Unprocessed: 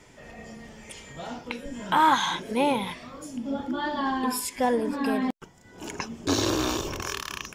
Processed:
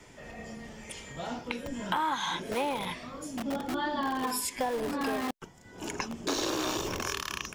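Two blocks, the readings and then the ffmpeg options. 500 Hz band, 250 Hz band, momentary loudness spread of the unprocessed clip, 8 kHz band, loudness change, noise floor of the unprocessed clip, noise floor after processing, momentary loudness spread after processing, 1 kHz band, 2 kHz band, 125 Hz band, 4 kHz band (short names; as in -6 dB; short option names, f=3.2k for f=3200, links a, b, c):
-4.5 dB, -6.0 dB, 20 LU, -2.5 dB, -6.0 dB, -53 dBFS, -53 dBFS, 13 LU, -6.5 dB, -4.0 dB, -6.0 dB, -3.5 dB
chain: -filter_complex "[0:a]acrossover=split=250|630|4900[a][b][c][d];[a]aeval=exprs='(mod(47.3*val(0)+1,2)-1)/47.3':c=same[e];[e][b][c][d]amix=inputs=4:normalize=0,acompressor=threshold=-27dB:ratio=6"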